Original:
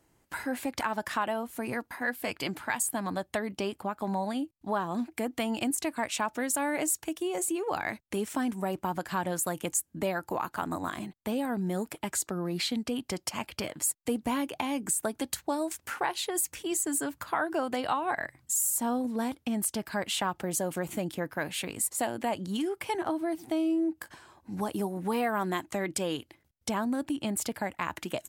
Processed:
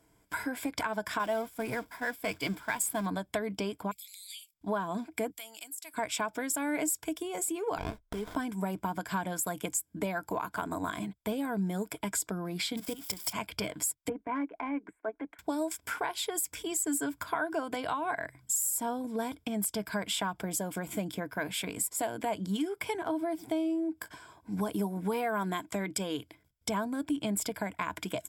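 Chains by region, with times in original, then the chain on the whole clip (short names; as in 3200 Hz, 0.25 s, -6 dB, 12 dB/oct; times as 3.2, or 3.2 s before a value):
1.19–3.06 zero-crossing step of -37 dBFS + expander -30 dBFS
3.91–4.54 steep high-pass 2200 Hz 72 dB/oct + bell 14000 Hz +14.5 dB 2.4 oct + compressor 4:1, threshold -42 dBFS
5.3–5.94 differentiator + compressor 4:1, threshold -39 dBFS
7.78–8.36 HPF 700 Hz 6 dB/oct + running maximum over 17 samples
12.77–13.33 switching spikes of -25.5 dBFS + level quantiser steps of 15 dB
14.09–15.39 elliptic band-pass 260–2100 Hz + low shelf 370 Hz -2.5 dB + transient shaper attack -7 dB, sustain -11 dB
whole clip: compressor 2:1, threshold -32 dBFS; ripple EQ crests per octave 1.7, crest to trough 9 dB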